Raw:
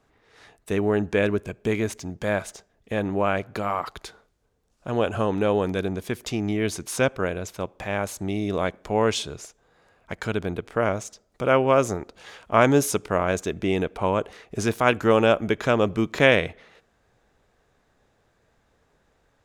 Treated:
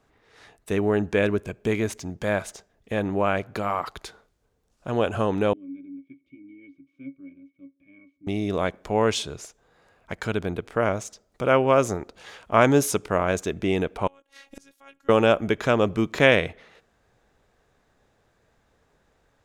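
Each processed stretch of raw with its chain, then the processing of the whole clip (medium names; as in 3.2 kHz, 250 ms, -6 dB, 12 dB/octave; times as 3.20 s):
5.53–8.27 s: vowel filter i + pitch-class resonator C#, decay 0.12 s
14.07–15.09 s: tilt shelf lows -5 dB, about 1.5 kHz + robot voice 276 Hz + inverted gate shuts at -24 dBFS, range -27 dB
whole clip: none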